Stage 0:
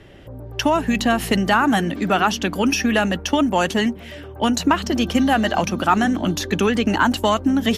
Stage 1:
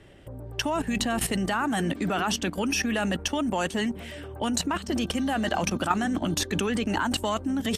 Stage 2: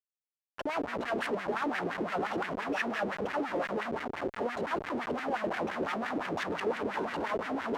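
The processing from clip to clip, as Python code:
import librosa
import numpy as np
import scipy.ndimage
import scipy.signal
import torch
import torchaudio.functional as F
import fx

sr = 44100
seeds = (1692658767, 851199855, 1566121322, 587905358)

y1 = fx.peak_eq(x, sr, hz=8500.0, db=13.0, octaves=0.24)
y1 = fx.level_steps(y1, sr, step_db=13)
y2 = fx.echo_multitap(y1, sr, ms=(175, 196, 244, 614, 800), db=(-8.5, -17.0, -18.5, -8.5, -12.5))
y2 = fx.schmitt(y2, sr, flips_db=-28.5)
y2 = fx.wah_lfo(y2, sr, hz=5.8, low_hz=380.0, high_hz=2000.0, q=2.5)
y2 = F.gain(torch.from_numpy(y2), 3.0).numpy()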